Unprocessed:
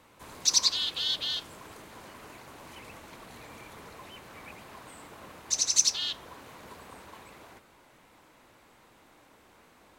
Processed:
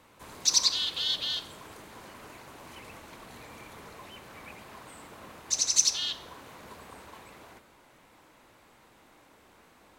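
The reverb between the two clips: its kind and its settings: Schroeder reverb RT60 0.64 s, combs from 29 ms, DRR 14 dB

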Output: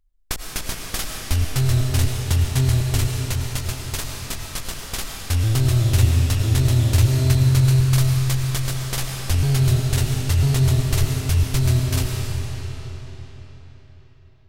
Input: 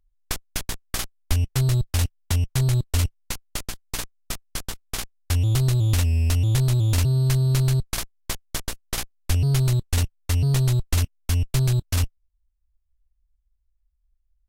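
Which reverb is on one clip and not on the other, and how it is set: digital reverb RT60 4.5 s, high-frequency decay 0.85×, pre-delay 60 ms, DRR 0 dB; gain +1 dB

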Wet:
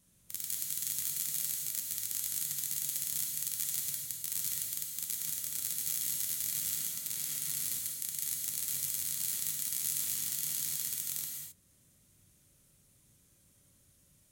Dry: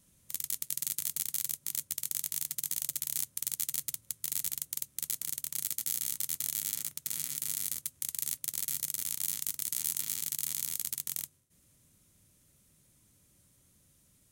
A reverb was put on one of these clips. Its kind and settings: non-linear reverb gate 0.29 s flat, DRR -1 dB; gain -3.5 dB

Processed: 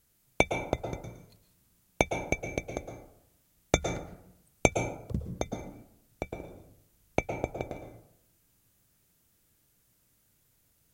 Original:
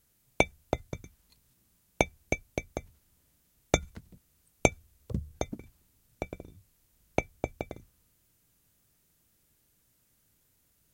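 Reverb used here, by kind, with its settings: plate-style reverb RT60 0.75 s, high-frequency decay 0.5×, pre-delay 0.1 s, DRR 5.5 dB

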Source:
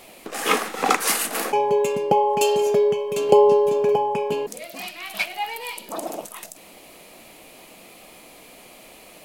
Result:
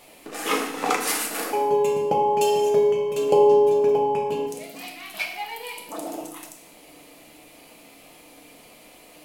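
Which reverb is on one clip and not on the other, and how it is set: FDN reverb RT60 0.78 s, low-frequency decay 1.6×, high-frequency decay 1×, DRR 1.5 dB; gain -5.5 dB

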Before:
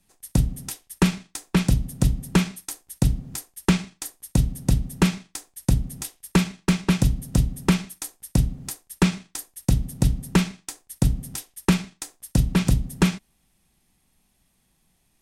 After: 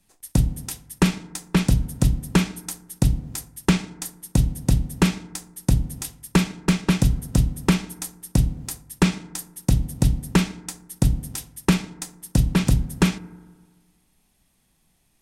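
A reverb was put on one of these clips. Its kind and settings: FDN reverb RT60 1.5 s, low-frequency decay 1×, high-frequency decay 0.3×, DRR 17 dB; gain +1 dB

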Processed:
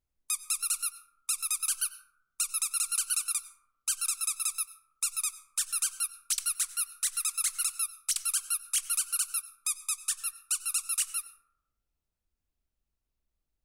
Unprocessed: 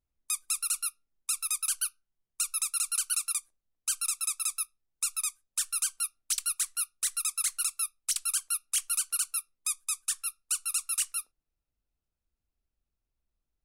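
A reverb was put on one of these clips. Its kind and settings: plate-style reverb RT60 0.84 s, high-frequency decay 0.35×, pre-delay 80 ms, DRR 13 dB

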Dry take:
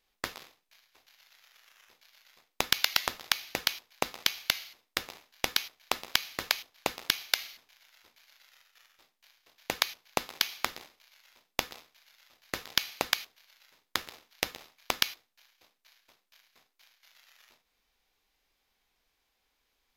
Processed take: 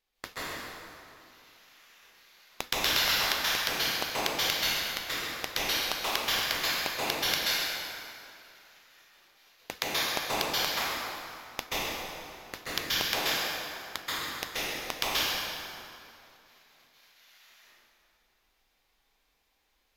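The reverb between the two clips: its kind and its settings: plate-style reverb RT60 2.6 s, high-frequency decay 0.7×, pre-delay 0.12 s, DRR -10 dB; gain -6.5 dB

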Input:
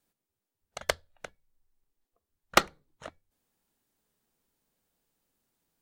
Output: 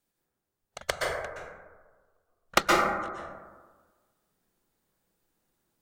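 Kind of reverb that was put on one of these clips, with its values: plate-style reverb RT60 1.4 s, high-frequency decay 0.3×, pre-delay 0.11 s, DRR -4 dB; gain -2 dB

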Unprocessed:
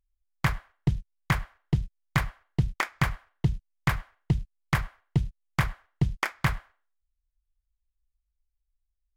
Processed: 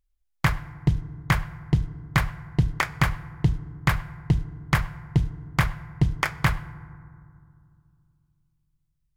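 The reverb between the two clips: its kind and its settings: FDN reverb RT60 2.3 s, low-frequency decay 1.45×, high-frequency decay 0.35×, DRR 15.5 dB; gain +3.5 dB

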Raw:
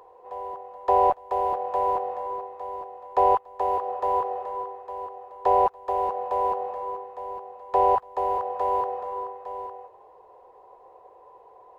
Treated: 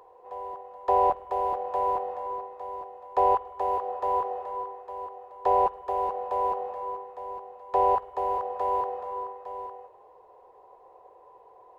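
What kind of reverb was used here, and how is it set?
spring tank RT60 1.9 s, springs 50 ms, chirp 65 ms, DRR 15.5 dB; gain -2.5 dB

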